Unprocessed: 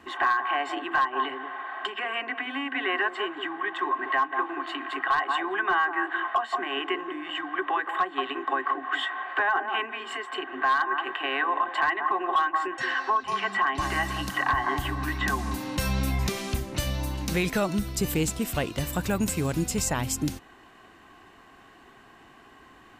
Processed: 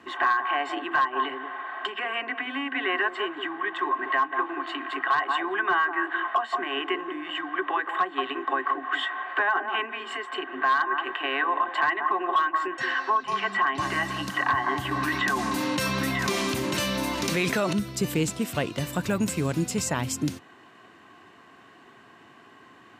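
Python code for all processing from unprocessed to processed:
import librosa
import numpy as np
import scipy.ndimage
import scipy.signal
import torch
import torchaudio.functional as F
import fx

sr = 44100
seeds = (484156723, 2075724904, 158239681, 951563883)

y = fx.chain(x, sr, fx.low_shelf(hz=190.0, db=-9.0),
    fx.echo_single(ms=943, db=-7.0),
    fx.env_flatten(amount_pct=70), at=(14.91, 17.73))
y = scipy.signal.sosfilt(scipy.signal.butter(4, 100.0, 'highpass', fs=sr, output='sos'), y)
y = fx.high_shelf(y, sr, hz=11000.0, db=-10.5)
y = fx.notch(y, sr, hz=790.0, q=15.0)
y = y * 10.0 ** (1.0 / 20.0)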